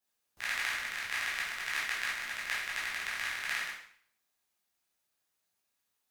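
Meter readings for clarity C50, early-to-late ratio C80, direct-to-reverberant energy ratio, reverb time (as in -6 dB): 3.0 dB, 7.0 dB, -7.0 dB, 0.60 s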